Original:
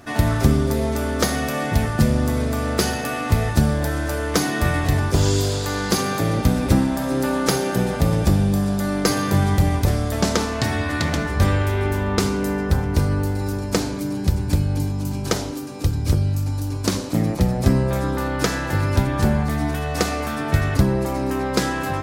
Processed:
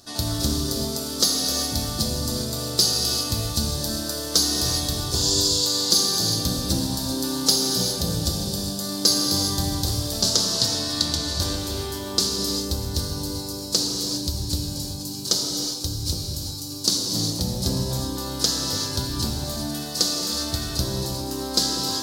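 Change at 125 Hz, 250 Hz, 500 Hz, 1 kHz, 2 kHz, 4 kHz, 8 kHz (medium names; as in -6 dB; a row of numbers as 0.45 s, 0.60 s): -9.0 dB, -7.0 dB, -7.5 dB, -9.0 dB, -12.5 dB, +9.5 dB, +7.5 dB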